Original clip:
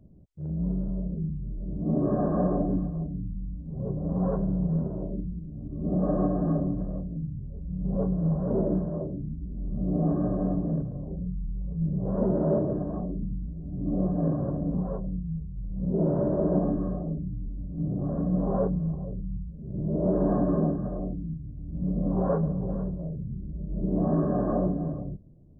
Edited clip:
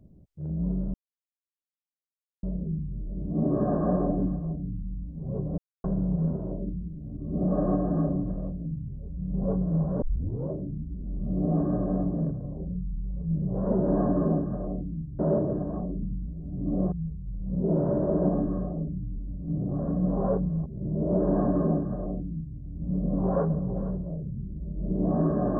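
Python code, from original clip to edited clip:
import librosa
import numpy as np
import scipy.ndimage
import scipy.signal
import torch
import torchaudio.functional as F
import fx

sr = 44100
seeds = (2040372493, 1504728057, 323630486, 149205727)

y = fx.edit(x, sr, fx.insert_silence(at_s=0.94, length_s=1.49),
    fx.silence(start_s=4.09, length_s=0.26),
    fx.tape_start(start_s=8.53, length_s=0.48),
    fx.cut(start_s=14.12, length_s=1.1),
    fx.cut(start_s=18.96, length_s=0.63),
    fx.duplicate(start_s=20.2, length_s=1.31, to_s=12.39), tone=tone)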